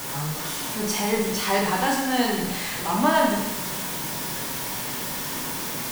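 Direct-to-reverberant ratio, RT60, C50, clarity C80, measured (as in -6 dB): -2.5 dB, 1.0 s, 2.5 dB, 5.0 dB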